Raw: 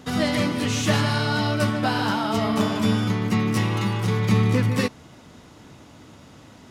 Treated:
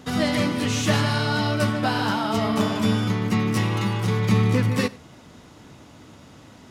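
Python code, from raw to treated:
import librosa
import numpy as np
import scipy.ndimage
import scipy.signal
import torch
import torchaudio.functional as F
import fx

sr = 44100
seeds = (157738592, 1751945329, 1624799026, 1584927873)

y = x + 10.0 ** (-22.5 / 20.0) * np.pad(x, (int(93 * sr / 1000.0), 0))[:len(x)]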